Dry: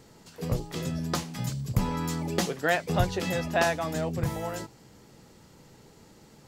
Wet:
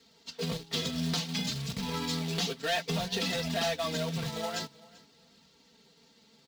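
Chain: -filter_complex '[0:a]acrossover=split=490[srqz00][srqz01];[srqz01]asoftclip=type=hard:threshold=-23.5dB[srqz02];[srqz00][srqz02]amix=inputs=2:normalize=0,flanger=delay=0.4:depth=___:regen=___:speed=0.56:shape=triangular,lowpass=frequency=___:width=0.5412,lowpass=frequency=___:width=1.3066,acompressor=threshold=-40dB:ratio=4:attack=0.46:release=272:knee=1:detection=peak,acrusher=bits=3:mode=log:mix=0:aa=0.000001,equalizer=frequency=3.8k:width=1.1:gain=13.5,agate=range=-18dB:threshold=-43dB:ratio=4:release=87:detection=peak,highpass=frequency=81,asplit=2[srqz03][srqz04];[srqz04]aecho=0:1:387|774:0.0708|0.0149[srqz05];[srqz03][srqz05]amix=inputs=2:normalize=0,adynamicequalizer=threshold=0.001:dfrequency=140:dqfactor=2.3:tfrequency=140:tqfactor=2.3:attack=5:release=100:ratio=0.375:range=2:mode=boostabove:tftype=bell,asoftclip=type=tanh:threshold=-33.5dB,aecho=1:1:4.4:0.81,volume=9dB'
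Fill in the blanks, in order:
9, -32, 7.3k, 7.3k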